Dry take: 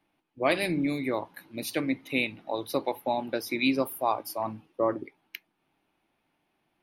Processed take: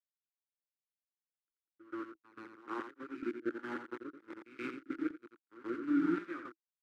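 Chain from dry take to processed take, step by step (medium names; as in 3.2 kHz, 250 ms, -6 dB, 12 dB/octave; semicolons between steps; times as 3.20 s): reverse the whole clip; distance through air 420 m; doubling 17 ms -6 dB; small samples zeroed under -27 dBFS; expander -34 dBFS; two resonant band-passes 670 Hz, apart 2.1 oct; delay 87 ms -7.5 dB; square tremolo 0.93 Hz, depth 65%, duty 75%; pre-echo 128 ms -16.5 dB; rotary cabinet horn 7.5 Hz, later 1.2 Hz, at 0.97 s; trim +5 dB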